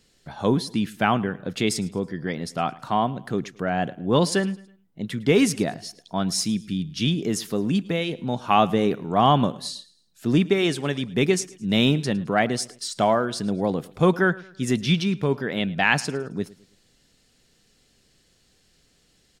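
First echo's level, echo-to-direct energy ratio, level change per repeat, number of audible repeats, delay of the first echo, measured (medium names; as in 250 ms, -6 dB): -21.0 dB, -20.5 dB, -8.0 dB, 2, 108 ms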